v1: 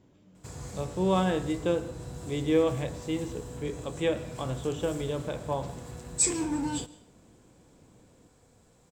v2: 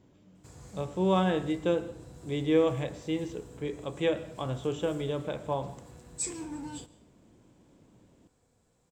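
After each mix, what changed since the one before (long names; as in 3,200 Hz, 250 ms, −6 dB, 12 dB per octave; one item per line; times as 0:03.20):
background −9.0 dB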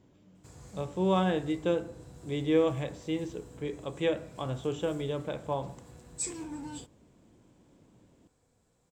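reverb: off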